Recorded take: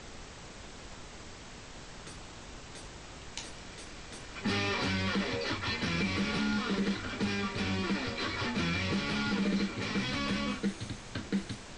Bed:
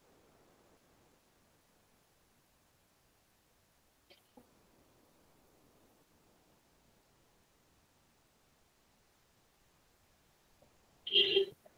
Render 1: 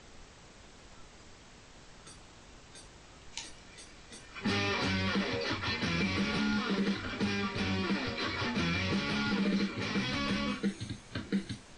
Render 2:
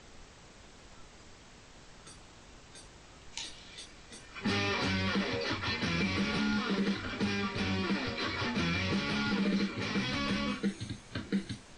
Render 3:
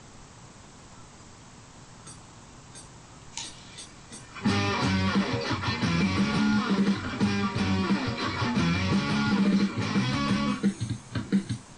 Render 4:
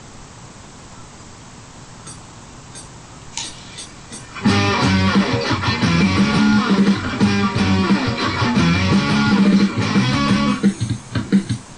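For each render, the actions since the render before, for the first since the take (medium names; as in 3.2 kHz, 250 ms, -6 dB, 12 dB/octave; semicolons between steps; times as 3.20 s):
noise print and reduce 7 dB
3.40–3.86 s: peaking EQ 3.6 kHz +9 dB 0.74 oct
graphic EQ 125/250/1000/8000 Hz +11/+5/+8/+9 dB
trim +10 dB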